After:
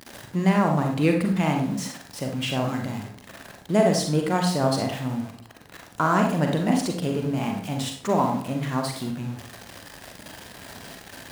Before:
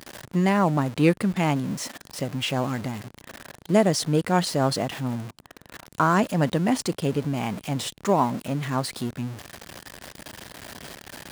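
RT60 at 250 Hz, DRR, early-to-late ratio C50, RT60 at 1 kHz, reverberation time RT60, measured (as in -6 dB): 0.60 s, 2.0 dB, 4.5 dB, 0.50 s, 0.55 s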